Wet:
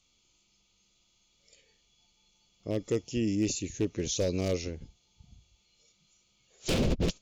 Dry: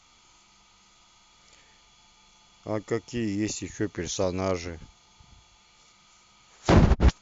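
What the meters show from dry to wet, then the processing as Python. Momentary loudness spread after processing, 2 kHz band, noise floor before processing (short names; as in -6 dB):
11 LU, -7.0 dB, -59 dBFS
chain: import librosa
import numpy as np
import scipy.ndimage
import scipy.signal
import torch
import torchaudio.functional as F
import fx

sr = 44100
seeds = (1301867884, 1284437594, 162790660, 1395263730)

y = fx.noise_reduce_blind(x, sr, reduce_db=10)
y = 10.0 ** (-19.0 / 20.0) * (np.abs((y / 10.0 ** (-19.0 / 20.0) + 3.0) % 4.0 - 2.0) - 1.0)
y = fx.band_shelf(y, sr, hz=1200.0, db=-12.5, octaves=1.7)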